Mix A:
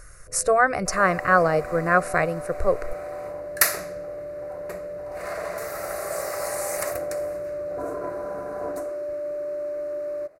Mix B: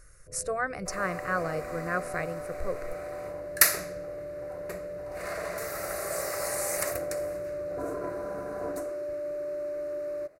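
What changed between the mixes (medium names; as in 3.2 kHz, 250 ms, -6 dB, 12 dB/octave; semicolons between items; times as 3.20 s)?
speech -8.5 dB; master: add peaking EQ 810 Hz -5.5 dB 1.5 oct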